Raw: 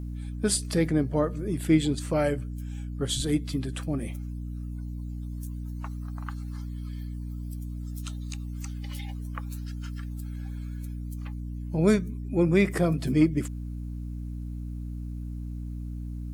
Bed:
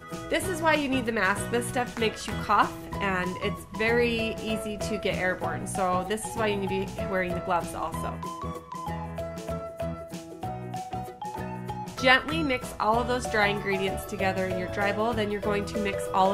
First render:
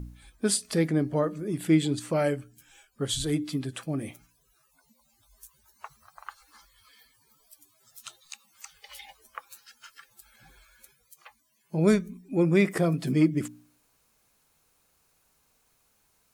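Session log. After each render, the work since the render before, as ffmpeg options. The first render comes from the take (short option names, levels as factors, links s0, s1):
-af "bandreject=f=60:t=h:w=4,bandreject=f=120:t=h:w=4,bandreject=f=180:t=h:w=4,bandreject=f=240:t=h:w=4,bandreject=f=300:t=h:w=4"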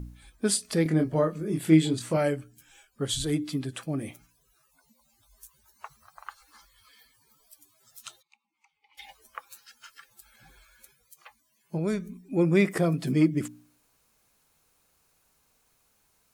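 -filter_complex "[0:a]asettb=1/sr,asplit=3[s0][s1][s2];[s0]atrim=end=0.834[s3];[s1]atrim=start=0.83:end=2.17,asetpts=PTS-STARTPTS,afade=t=in:d=0.004:c=qsin,afade=t=out:st=1.336:d=0.004:c=qsin,asplit=2[s4][s5];[s5]adelay=25,volume=0.596[s6];[s4][s6]amix=inputs=2:normalize=0,atrim=end_sample=59094[s7];[s2]atrim=start=2.166[s8];[s3][s7]acrossfade=d=0.004:c1=hsin:c2=qsin[s9];[s9][s8]acrossfade=d=0.004:c1=qsin:c2=hsin,asplit=3[s10][s11][s12];[s10]afade=t=out:st=8.21:d=0.02[s13];[s11]asplit=3[s14][s15][s16];[s14]bandpass=f=300:t=q:w=8,volume=1[s17];[s15]bandpass=f=870:t=q:w=8,volume=0.501[s18];[s16]bandpass=f=2240:t=q:w=8,volume=0.355[s19];[s17][s18][s19]amix=inputs=3:normalize=0,afade=t=in:st=8.21:d=0.02,afade=t=out:st=8.97:d=0.02[s20];[s12]afade=t=in:st=8.97:d=0.02[s21];[s13][s20][s21]amix=inputs=3:normalize=0,asettb=1/sr,asplit=3[s22][s23][s24];[s22]atrim=end=11.774[s25];[s23]atrim=start=11.77:end=12.19,asetpts=PTS-STARTPTS,afade=t=in:d=0.004:c=qsin,afade=t=out:st=0.416:d=0.004:c=qsin,acompressor=threshold=0.0355:ratio=2:attack=3.2:release=140:knee=1:detection=peak[s26];[s24]atrim=start=12.186[s27];[s25][s26]acrossfade=d=0.004:c1=hsin:c2=qsin[s28];[s28][s27]acrossfade=d=0.004:c1=qsin:c2=hsin"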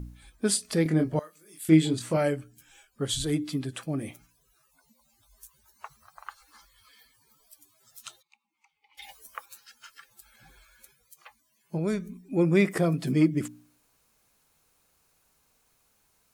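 -filter_complex "[0:a]asettb=1/sr,asplit=3[s0][s1][s2];[s0]atrim=end=1.194[s3];[s1]atrim=start=1.19:end=1.69,asetpts=PTS-STARTPTS,afade=t=in:d=0.004:c=qsin,afade=t=out:st=0.496:d=0.004:c=qsin,aderivative[s4];[s2]atrim=start=1.686[s5];[s3][s4]acrossfade=d=0.004:c1=hsin:c2=qsin[s6];[s6][s5]acrossfade=d=0.004:c1=qsin:c2=hsin,asettb=1/sr,asplit=3[s7][s8][s9];[s7]atrim=end=9.024[s10];[s8]atrim=start=9.02:end=9.46,asetpts=PTS-STARTPTS,afade=t=in:d=0.004:c=qsin,afade=t=out:st=0.436:d=0.004:c=qsin,highshelf=f=5900:g=11[s11];[s9]atrim=start=9.456[s12];[s10][s11]acrossfade=d=0.004:c1=hsin:c2=qsin[s13];[s13][s12]acrossfade=d=0.004:c1=qsin:c2=hsin"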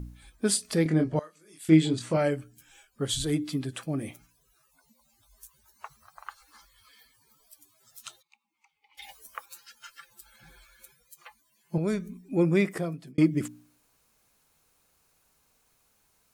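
-filter_complex "[0:a]asettb=1/sr,asplit=3[s0][s1][s2];[s0]atrim=end=0.854[s3];[s1]atrim=start=0.85:end=2.32,asetpts=PTS-STARTPTS,afade=t=in:d=0.004:c=qsin,afade=t=out:st=1.466:d=0.004:c=qsin,lowpass=8100[s4];[s2]atrim=start=2.316[s5];[s3][s4]acrossfade=d=0.004:c1=hsin:c2=qsin[s6];[s6][s5]acrossfade=d=0.004:c1=qsin:c2=hsin,asettb=1/sr,asplit=3[s7][s8][s9];[s7]atrim=end=9.504[s10];[s8]atrim=start=9.5:end=11.78,asetpts=PTS-STARTPTS,afade=t=in:d=0.004:c=qsin,afade=t=out:st=2.276:d=0.004:c=qsin,aecho=1:1:5.8:0.65,atrim=end_sample=100548[s11];[s9]atrim=start=11.776[s12];[s10][s11]acrossfade=d=0.004:c1=hsin:c2=qsin[s13];[s13][s12]acrossfade=d=0.004:c1=qsin:c2=hsin,asplit=2[s14][s15];[s14]atrim=end=13.18,asetpts=PTS-STARTPTS,afade=t=out:st=12.43:d=0.75[s16];[s15]atrim=start=13.18,asetpts=PTS-STARTPTS,afade=t=in:d=0.004:c=hsin[s17];[s16][s17]concat=n=2:v=0:a=1"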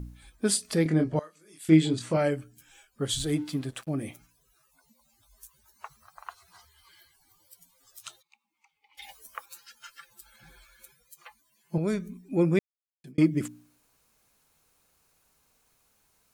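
-filter_complex "[0:a]asettb=1/sr,asplit=3[s0][s1][s2];[s0]atrim=end=3.174[s3];[s1]atrim=start=3.17:end=3.89,asetpts=PTS-STARTPTS,afade=t=in:d=0.004:c=qsin,afade=t=out:st=0.716:d=0.004:c=qsin,aeval=exprs='sgn(val(0))*max(abs(val(0))-0.00266,0)':c=same[s4];[s2]atrim=start=3.886[s5];[s3][s4]acrossfade=d=0.004:c1=hsin:c2=qsin[s6];[s6][s5]acrossfade=d=0.004:c1=qsin:c2=hsin,asettb=1/sr,asplit=3[s7][s8][s9];[s7]atrim=end=6.284[s10];[s8]atrim=start=6.28:end=8.06,asetpts=PTS-STARTPTS,afade=t=in:d=0.004:c=qsin,afade=t=out:st=1.776:d=0.004:c=qsin,afreqshift=-120[s11];[s9]atrim=start=8.056[s12];[s10][s11]acrossfade=d=0.004:c1=hsin:c2=qsin[s13];[s13][s12]acrossfade=d=0.004:c1=qsin:c2=hsin,asplit=3[s14][s15][s16];[s14]atrim=end=12.59,asetpts=PTS-STARTPTS,afade=t=out:st=12.586:d=0.004:c=hsin[s17];[s15]atrim=start=12.59:end=13.04,asetpts=PTS-STARTPTS,volume=0[s18];[s16]atrim=start=13.04,asetpts=PTS-STARTPTS,afade=t=in:d=0.004:c=hsin[s19];[s17][s18][s19]concat=n=3:v=0:a=1"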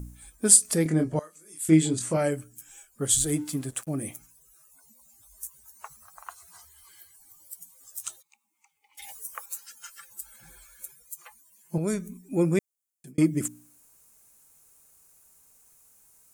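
-af "highshelf=f=5700:t=q:w=1.5:g=10.5"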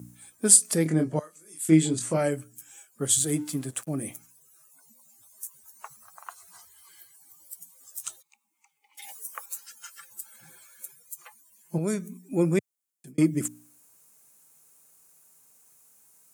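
-af "highpass=f=110:w=0.5412,highpass=f=110:w=1.3066"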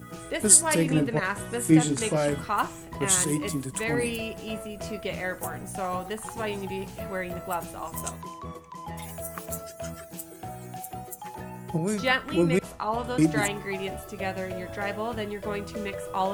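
-filter_complex "[1:a]volume=0.596[s0];[0:a][s0]amix=inputs=2:normalize=0"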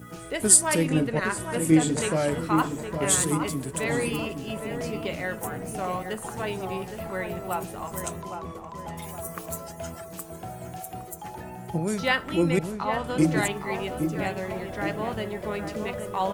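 -filter_complex "[0:a]asplit=2[s0][s1];[s1]adelay=815,lowpass=f=1300:p=1,volume=0.501,asplit=2[s2][s3];[s3]adelay=815,lowpass=f=1300:p=1,volume=0.51,asplit=2[s4][s5];[s5]adelay=815,lowpass=f=1300:p=1,volume=0.51,asplit=2[s6][s7];[s7]adelay=815,lowpass=f=1300:p=1,volume=0.51,asplit=2[s8][s9];[s9]adelay=815,lowpass=f=1300:p=1,volume=0.51,asplit=2[s10][s11];[s11]adelay=815,lowpass=f=1300:p=1,volume=0.51[s12];[s0][s2][s4][s6][s8][s10][s12]amix=inputs=7:normalize=0"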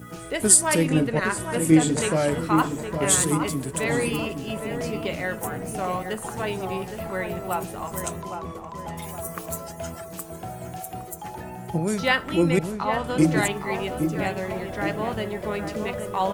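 -af "volume=1.33,alimiter=limit=0.794:level=0:latency=1"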